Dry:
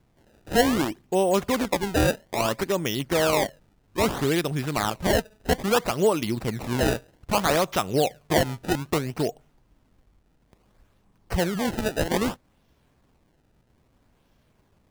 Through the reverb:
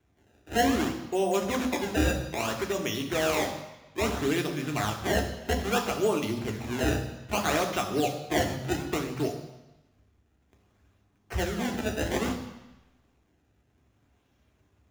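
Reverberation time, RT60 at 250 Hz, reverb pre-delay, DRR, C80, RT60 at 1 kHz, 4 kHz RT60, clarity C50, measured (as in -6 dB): 1.0 s, 1.0 s, 3 ms, 3.0 dB, 10.5 dB, 1.1 s, 1.1 s, 8.5 dB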